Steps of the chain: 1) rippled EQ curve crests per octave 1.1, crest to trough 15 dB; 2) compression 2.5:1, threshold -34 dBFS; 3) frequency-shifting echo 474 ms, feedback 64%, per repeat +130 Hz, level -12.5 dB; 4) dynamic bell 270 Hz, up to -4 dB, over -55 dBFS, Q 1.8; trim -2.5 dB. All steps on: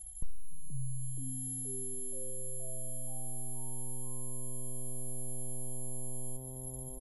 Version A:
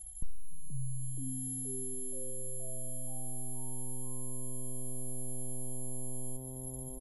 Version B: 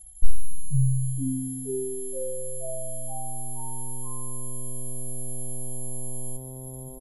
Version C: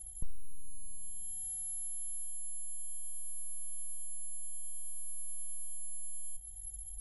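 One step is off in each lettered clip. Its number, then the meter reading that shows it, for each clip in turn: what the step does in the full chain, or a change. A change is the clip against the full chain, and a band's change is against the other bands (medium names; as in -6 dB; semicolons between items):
4, 250 Hz band +3.0 dB; 2, mean gain reduction 6.0 dB; 3, momentary loudness spread change +3 LU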